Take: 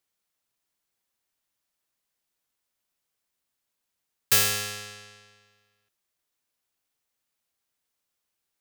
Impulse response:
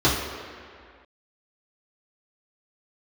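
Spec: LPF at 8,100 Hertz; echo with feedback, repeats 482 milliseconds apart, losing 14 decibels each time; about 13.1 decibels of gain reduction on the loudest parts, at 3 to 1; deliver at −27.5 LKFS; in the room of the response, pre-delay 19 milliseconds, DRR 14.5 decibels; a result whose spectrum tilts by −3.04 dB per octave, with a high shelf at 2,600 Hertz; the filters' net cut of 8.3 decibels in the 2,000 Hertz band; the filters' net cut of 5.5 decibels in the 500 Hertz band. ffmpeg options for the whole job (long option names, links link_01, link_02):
-filter_complex "[0:a]lowpass=8100,equalizer=frequency=500:width_type=o:gain=-6,equalizer=frequency=2000:width_type=o:gain=-8.5,highshelf=frequency=2600:gain=-4.5,acompressor=threshold=-43dB:ratio=3,aecho=1:1:482|964:0.2|0.0399,asplit=2[link_01][link_02];[1:a]atrim=start_sample=2205,adelay=19[link_03];[link_02][link_03]afir=irnorm=-1:irlink=0,volume=-33.5dB[link_04];[link_01][link_04]amix=inputs=2:normalize=0,volume=16.5dB"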